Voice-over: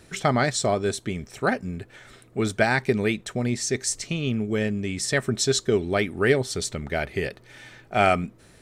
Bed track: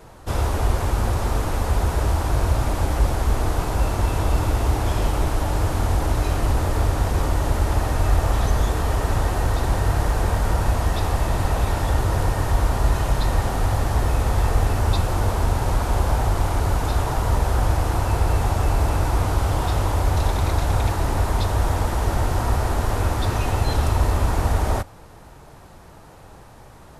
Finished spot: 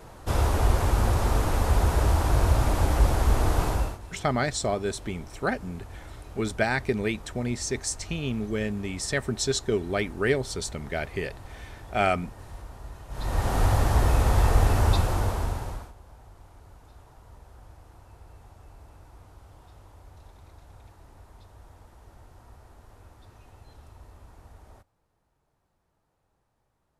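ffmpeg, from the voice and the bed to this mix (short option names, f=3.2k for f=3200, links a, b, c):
-filter_complex "[0:a]adelay=4000,volume=-4dB[a];[1:a]volume=20dB,afade=t=out:st=3.67:d=0.32:silence=0.0891251,afade=t=in:st=13.09:d=0.51:silence=0.0841395,afade=t=out:st=14.83:d=1.1:silence=0.0354813[b];[a][b]amix=inputs=2:normalize=0"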